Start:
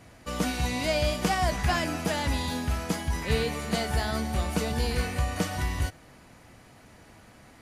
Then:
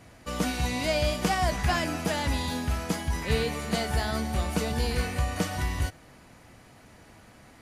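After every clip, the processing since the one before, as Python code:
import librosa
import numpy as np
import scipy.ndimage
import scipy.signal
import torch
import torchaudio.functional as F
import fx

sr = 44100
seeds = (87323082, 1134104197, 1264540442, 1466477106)

y = x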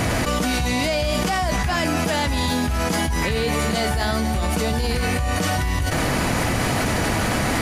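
y = fx.env_flatten(x, sr, amount_pct=100)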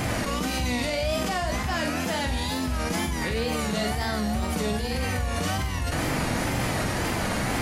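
y = fx.room_flutter(x, sr, wall_m=7.7, rt60_s=0.43)
y = fx.wow_flutter(y, sr, seeds[0], rate_hz=2.1, depth_cents=95.0)
y = y * librosa.db_to_amplitude(-6.5)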